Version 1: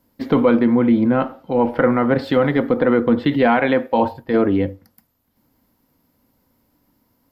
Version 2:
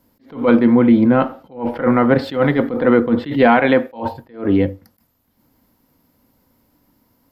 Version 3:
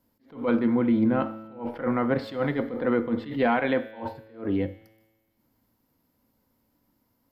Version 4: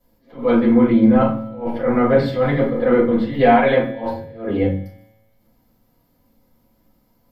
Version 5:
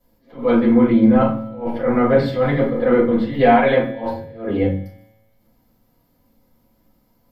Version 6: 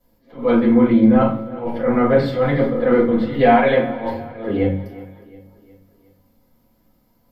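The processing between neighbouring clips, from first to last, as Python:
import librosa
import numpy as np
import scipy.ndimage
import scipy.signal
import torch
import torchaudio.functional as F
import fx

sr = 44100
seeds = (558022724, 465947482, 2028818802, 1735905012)

y1 = fx.attack_slew(x, sr, db_per_s=160.0)
y1 = F.gain(torch.from_numpy(y1), 3.5).numpy()
y2 = fx.comb_fb(y1, sr, f0_hz=110.0, decay_s=1.3, harmonics='all', damping=0.0, mix_pct=60)
y2 = F.gain(torch.from_numpy(y2), -3.5).numpy()
y3 = fx.room_shoebox(y2, sr, seeds[0], volume_m3=170.0, walls='furnished', distance_m=5.7)
y3 = F.gain(torch.from_numpy(y3), -2.5).numpy()
y4 = y3
y5 = fx.echo_feedback(y4, sr, ms=361, feedback_pct=49, wet_db=-18)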